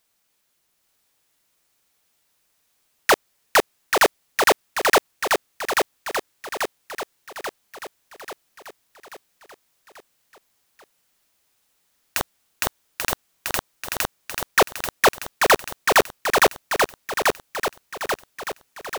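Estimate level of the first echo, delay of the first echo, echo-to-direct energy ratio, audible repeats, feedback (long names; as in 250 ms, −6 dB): −4.0 dB, 837 ms, −2.5 dB, 6, 54%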